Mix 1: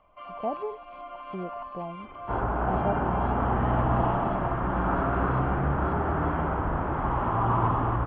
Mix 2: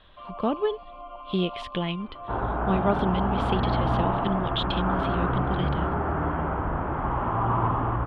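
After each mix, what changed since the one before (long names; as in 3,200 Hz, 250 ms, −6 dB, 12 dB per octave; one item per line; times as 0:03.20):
speech: remove transistor ladder low-pass 800 Hz, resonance 70%
first sound: add Butterworth band-reject 1,800 Hz, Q 1.6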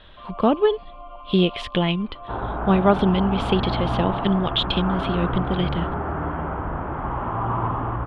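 speech +7.5 dB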